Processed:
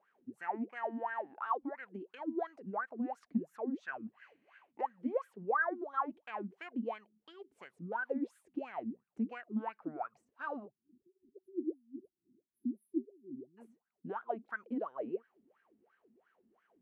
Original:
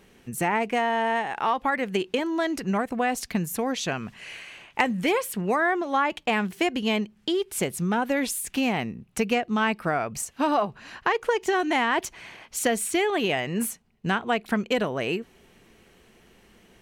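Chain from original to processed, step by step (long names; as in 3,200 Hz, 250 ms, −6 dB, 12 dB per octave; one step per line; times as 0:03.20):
time-frequency box erased 0:10.68–0:13.58, 390–9,700 Hz
LFO wah 2.9 Hz 230–1,600 Hz, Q 13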